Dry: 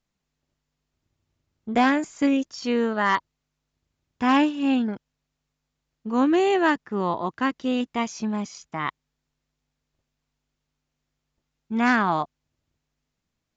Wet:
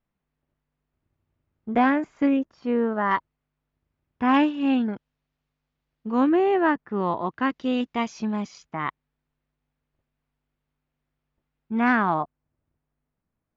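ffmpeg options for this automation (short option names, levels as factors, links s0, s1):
-af "asetnsamples=n=441:p=0,asendcmd='2.39 lowpass f 1400;3.11 lowpass f 2200;4.34 lowpass f 3400;6.29 lowpass f 1800;6.88 lowpass f 2900;7.5 lowpass f 4400;8.66 lowpass f 2400;12.14 lowpass f 1500',lowpass=2100"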